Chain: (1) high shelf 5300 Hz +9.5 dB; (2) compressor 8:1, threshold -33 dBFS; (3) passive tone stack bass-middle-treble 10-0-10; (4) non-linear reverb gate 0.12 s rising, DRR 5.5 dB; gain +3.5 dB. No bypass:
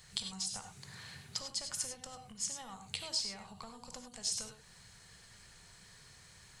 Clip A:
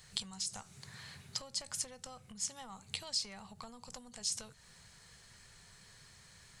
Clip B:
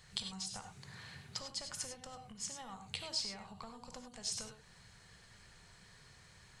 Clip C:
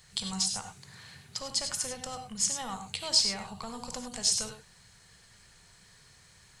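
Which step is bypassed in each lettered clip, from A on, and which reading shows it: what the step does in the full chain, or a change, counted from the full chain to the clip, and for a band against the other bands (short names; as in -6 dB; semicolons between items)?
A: 4, loudness change -1.0 LU; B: 1, 8 kHz band -5.0 dB; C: 2, mean gain reduction 5.0 dB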